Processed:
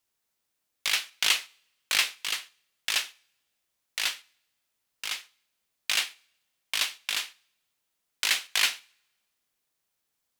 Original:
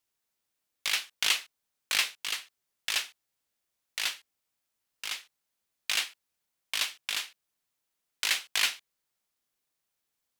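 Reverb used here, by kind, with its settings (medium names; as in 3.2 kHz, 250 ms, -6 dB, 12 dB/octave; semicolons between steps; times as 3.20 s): two-slope reverb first 0.54 s, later 1.6 s, from -22 dB, DRR 20 dB; trim +2.5 dB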